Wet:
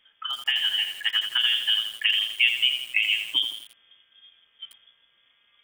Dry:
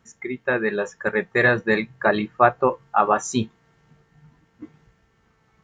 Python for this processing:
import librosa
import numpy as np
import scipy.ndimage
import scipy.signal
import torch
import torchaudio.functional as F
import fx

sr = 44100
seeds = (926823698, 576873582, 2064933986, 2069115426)

y = fx.env_lowpass_down(x, sr, base_hz=710.0, full_db=-16.5)
y = fx.freq_invert(y, sr, carrier_hz=3400)
y = fx.echo_crushed(y, sr, ms=83, feedback_pct=55, bits=6, wet_db=-7.0)
y = F.gain(torch.from_numpy(y), -2.0).numpy()